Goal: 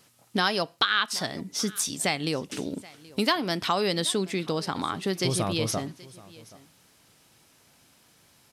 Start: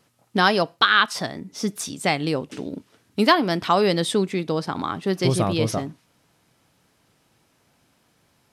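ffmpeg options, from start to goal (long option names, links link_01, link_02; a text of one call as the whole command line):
ffmpeg -i in.wav -filter_complex "[0:a]highshelf=frequency=2500:gain=8.5,acompressor=threshold=-28dB:ratio=2,asplit=2[link_01][link_02];[link_02]aecho=0:1:777:0.0841[link_03];[link_01][link_03]amix=inputs=2:normalize=0" out.wav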